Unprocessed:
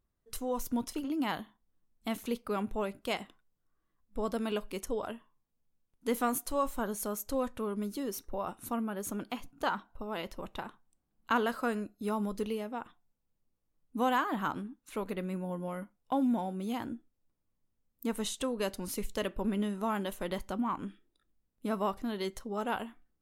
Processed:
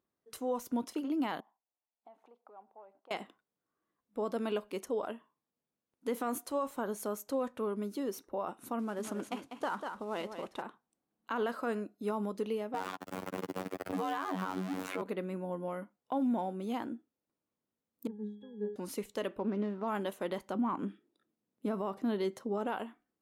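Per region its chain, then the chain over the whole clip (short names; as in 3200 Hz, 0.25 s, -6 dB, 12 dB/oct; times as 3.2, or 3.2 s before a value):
1.4–3.11 sample leveller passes 1 + compressor 5:1, threshold -44 dBFS + band-pass 790 Hz, Q 3.8
8.79–10.62 CVSD 64 kbps + echo 0.195 s -9 dB
12.74–15.02 zero-crossing step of -34 dBFS + robotiser 93.4 Hz + three-band squash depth 100%
18.07–18.76 low shelf 410 Hz +11.5 dB + octave resonator G#, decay 0.47 s + short-mantissa float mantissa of 8-bit
19.38–19.88 median filter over 15 samples + LPF 4000 Hz
20.55–22.67 HPF 120 Hz + low shelf 390 Hz +7.5 dB
whole clip: HPF 300 Hz 12 dB/oct; tilt -2 dB/oct; limiter -25 dBFS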